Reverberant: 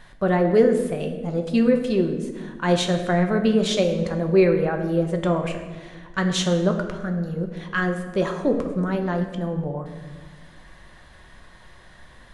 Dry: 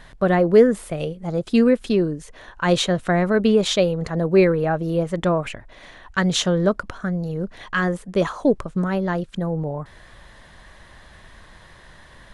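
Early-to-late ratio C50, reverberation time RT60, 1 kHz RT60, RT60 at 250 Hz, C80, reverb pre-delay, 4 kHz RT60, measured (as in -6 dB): 8.0 dB, 1.4 s, 1.2 s, 2.2 s, 9.0 dB, 3 ms, 0.90 s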